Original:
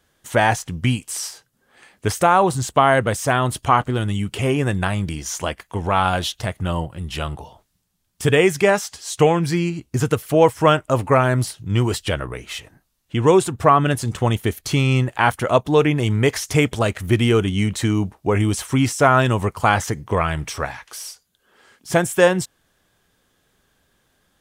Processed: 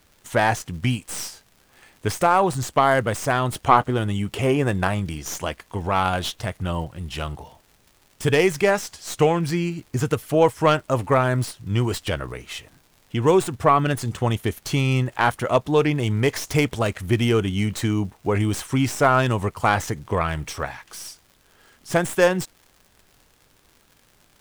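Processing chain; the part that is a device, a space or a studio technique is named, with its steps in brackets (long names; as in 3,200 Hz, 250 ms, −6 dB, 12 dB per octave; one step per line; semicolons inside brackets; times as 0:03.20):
0:03.55–0:05.00: parametric band 620 Hz +4.5 dB 2.5 octaves
record under a worn stylus (stylus tracing distortion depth 0.05 ms; surface crackle 110 per second −37 dBFS; pink noise bed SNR 38 dB)
level −3 dB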